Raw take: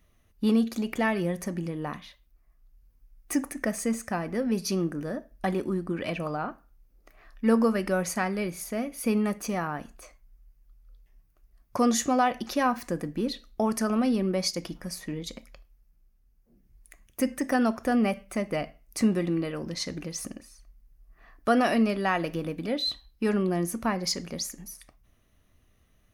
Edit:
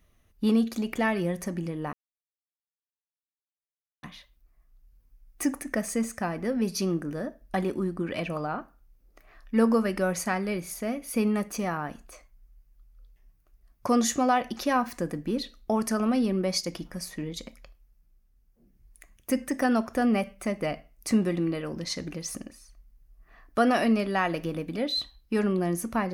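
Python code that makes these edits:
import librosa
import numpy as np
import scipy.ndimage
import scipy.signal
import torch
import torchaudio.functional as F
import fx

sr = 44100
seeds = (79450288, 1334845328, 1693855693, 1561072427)

y = fx.edit(x, sr, fx.insert_silence(at_s=1.93, length_s=2.1), tone=tone)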